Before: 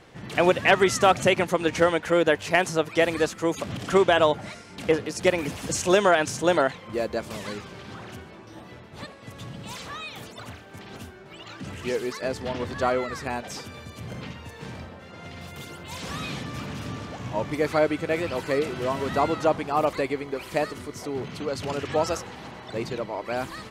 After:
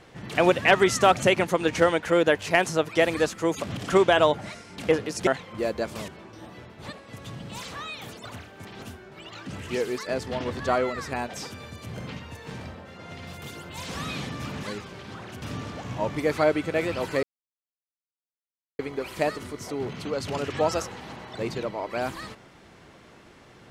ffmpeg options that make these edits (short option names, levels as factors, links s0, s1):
-filter_complex "[0:a]asplit=7[s0][s1][s2][s3][s4][s5][s6];[s0]atrim=end=5.272[s7];[s1]atrim=start=6.618:end=7.432[s8];[s2]atrim=start=8.218:end=16.772[s9];[s3]atrim=start=7.428:end=8.222[s10];[s4]atrim=start=16.768:end=18.58,asetpts=PTS-STARTPTS,afade=t=out:st=1.808:d=0.004:c=hsin[s11];[s5]atrim=start=18.58:end=20.14,asetpts=PTS-STARTPTS,volume=0[s12];[s6]atrim=start=20.14,asetpts=PTS-STARTPTS,afade=t=in:d=0.004:c=hsin[s13];[s7][s8]acrossfade=d=0.004:c1=hsin:c2=hsin[s14];[s14][s9]acrossfade=d=0.004:c1=hsin:c2=hsin[s15];[s15][s10]acrossfade=d=0.004:c1=hsin:c2=hsin[s16];[s11][s12][s13]concat=n=3:v=0:a=1[s17];[s16][s17]acrossfade=d=0.004:c1=hsin:c2=hsin"